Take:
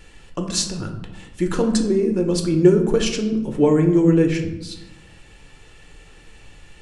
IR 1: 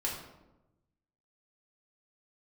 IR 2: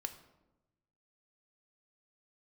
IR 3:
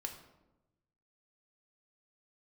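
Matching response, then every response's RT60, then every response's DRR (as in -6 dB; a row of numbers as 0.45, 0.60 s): 3; 1.0, 1.0, 1.0 s; -4.0, 7.5, 3.5 dB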